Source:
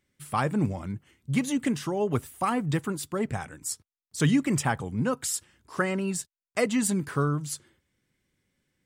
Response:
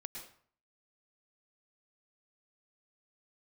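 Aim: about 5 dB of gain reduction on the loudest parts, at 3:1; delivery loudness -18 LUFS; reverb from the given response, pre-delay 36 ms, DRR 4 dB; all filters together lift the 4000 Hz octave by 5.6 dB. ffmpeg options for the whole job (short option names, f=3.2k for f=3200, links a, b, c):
-filter_complex "[0:a]equalizer=f=4k:t=o:g=7.5,acompressor=threshold=-25dB:ratio=3,asplit=2[a][b];[1:a]atrim=start_sample=2205,adelay=36[c];[b][c]afir=irnorm=-1:irlink=0,volume=-1.5dB[d];[a][d]amix=inputs=2:normalize=0,volume=11.5dB"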